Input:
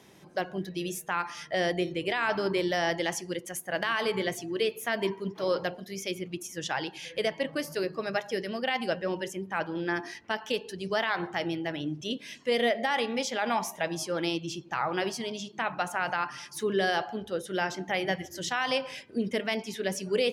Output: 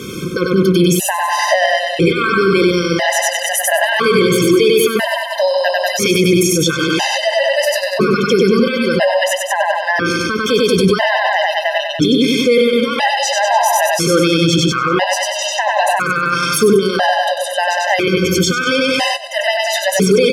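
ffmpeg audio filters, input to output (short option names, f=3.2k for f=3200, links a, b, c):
-filter_complex "[0:a]asettb=1/sr,asplit=3[a][b][c];[a]atrim=end=7.054[d];[b]atrim=start=7.05:end=8.29,asetpts=PTS-STARTPTS,afade=t=in:d=0.004:c=qsin,afade=t=out:st=1.236:d=0.004:c=qsin,highshelf=f=9.6k:g=-9[e];[c]atrim=start=8.286[f];[d][e]acrossfade=d=0.004:c1=hsin:c2=qsin[g];[g][f]acrossfade=d=0.004:c1=qsin:c2=hsin,aecho=1:1:96|192|288|384|480|576|672:0.668|0.361|0.195|0.105|0.0568|0.0307|0.0166,alimiter=level_in=32.5dB:limit=-1dB:release=50:level=0:latency=1,afftfilt=real='re*gt(sin(2*PI*0.5*pts/sr)*(1-2*mod(floor(b*sr/1024/520),2)),0)':imag='im*gt(sin(2*PI*0.5*pts/sr)*(1-2*mod(floor(b*sr/1024/520),2)),0)':win_size=1024:overlap=0.75,volume=-2dB"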